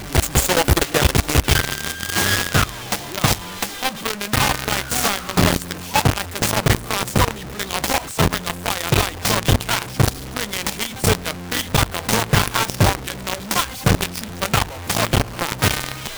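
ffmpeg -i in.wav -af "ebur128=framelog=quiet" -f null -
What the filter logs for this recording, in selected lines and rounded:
Integrated loudness:
  I:         -19.8 LUFS
  Threshold: -29.8 LUFS
Loudness range:
  LRA:         1.5 LU
  Threshold: -40.0 LUFS
  LRA low:   -20.5 LUFS
  LRA high:  -19.0 LUFS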